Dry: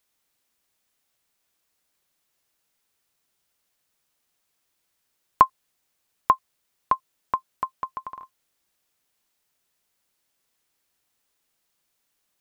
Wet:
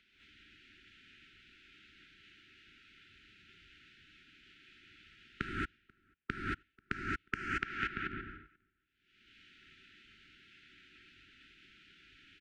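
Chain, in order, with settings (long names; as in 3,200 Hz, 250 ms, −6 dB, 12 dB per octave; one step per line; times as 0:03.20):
noise gate −45 dBFS, range −18 dB
Chebyshev low-pass filter 2,900 Hz, order 3
upward compression, threshold −31 dBFS
brickwall limiter −13 dBFS, peak gain reduction 11 dB
linear-phase brick-wall band-stop 410–1,300 Hz
on a send: repeating echo 488 ms, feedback 27%, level −20 dB
on the sum: reverb whose tail is shaped and stops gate 250 ms rising, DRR −4.5 dB
multiband upward and downward expander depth 100%
level −1.5 dB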